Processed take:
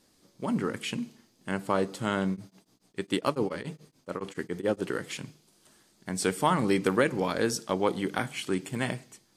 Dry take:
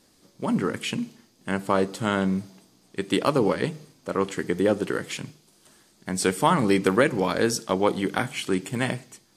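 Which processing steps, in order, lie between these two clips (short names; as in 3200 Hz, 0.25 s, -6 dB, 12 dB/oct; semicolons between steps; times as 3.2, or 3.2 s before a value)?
2.3–4.79 beating tremolo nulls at 7.1 Hz; gain -4.5 dB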